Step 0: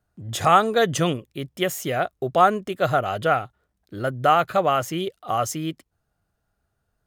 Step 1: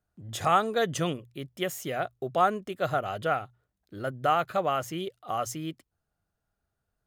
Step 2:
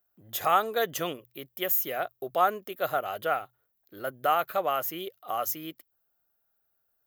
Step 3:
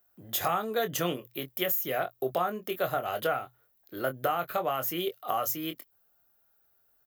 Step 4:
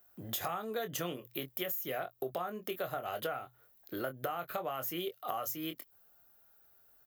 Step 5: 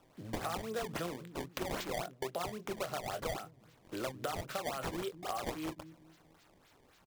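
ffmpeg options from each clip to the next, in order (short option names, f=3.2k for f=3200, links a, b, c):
-af "bandreject=f=60:t=h:w=6,bandreject=f=120:t=h:w=6,volume=-7dB"
-af "bass=f=250:g=-14,treble=f=4k:g=-1,aexciter=amount=13:drive=3.2:freq=12k"
-filter_complex "[0:a]acrossover=split=240[a][b];[b]acompressor=threshold=-33dB:ratio=6[c];[a][c]amix=inputs=2:normalize=0,asplit=2[d][e];[e]adelay=23,volume=-8dB[f];[d][f]amix=inputs=2:normalize=0,volume=6dB"
-af "acompressor=threshold=-42dB:ratio=3,volume=4dB"
-filter_complex "[0:a]acrossover=split=270[a][b];[a]aecho=1:1:213|426|639|852|1065:0.596|0.238|0.0953|0.0381|0.0152[c];[b]acrusher=samples=19:mix=1:aa=0.000001:lfo=1:lforange=30.4:lforate=3.7[d];[c][d]amix=inputs=2:normalize=0,volume=-1dB"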